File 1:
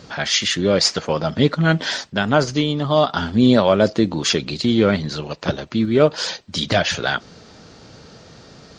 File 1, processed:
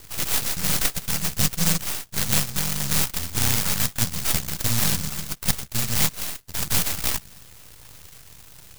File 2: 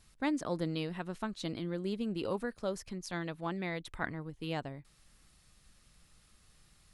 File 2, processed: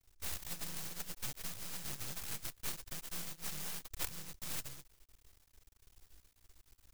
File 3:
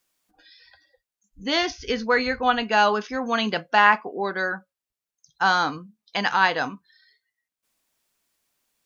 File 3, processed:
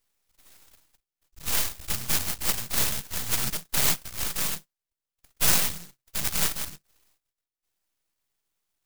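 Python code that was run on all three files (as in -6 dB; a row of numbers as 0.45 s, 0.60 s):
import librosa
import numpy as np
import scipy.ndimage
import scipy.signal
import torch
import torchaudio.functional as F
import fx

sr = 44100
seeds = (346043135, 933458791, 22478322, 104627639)

y = fx.bit_reversed(x, sr, seeds[0], block=128)
y = fx.env_flanger(y, sr, rest_ms=2.5, full_db=-14.5)
y = np.maximum(y, 0.0)
y = fx.rider(y, sr, range_db=3, speed_s=0.5)
y = fx.noise_mod_delay(y, sr, seeds[1], noise_hz=5900.0, depth_ms=0.49)
y = y * librosa.db_to_amplitude(3.5)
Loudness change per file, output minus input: -4.5 LU, -5.0 LU, -3.5 LU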